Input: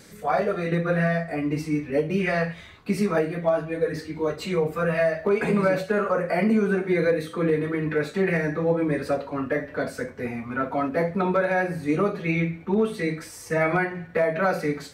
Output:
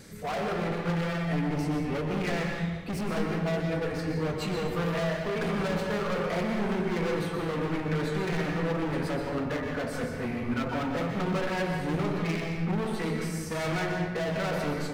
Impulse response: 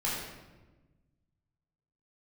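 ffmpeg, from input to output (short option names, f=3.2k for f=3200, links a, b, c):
-filter_complex "[0:a]lowshelf=f=190:g=7.5,volume=28dB,asoftclip=hard,volume=-28dB,asplit=2[a][b];[1:a]atrim=start_sample=2205,adelay=122[c];[b][c]afir=irnorm=-1:irlink=0,volume=-9.5dB[d];[a][d]amix=inputs=2:normalize=0,volume=-2dB"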